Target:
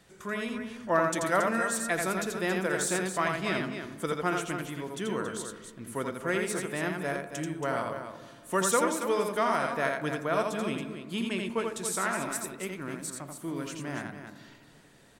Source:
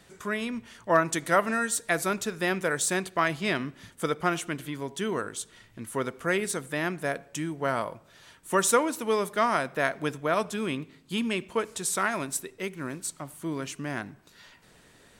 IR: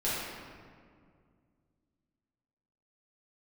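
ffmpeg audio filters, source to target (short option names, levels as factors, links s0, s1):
-filter_complex "[0:a]aecho=1:1:84.55|277:0.631|0.355,asplit=2[s0][s1];[1:a]atrim=start_sample=2205,lowpass=2000[s2];[s1][s2]afir=irnorm=-1:irlink=0,volume=0.112[s3];[s0][s3]amix=inputs=2:normalize=0,volume=0.596"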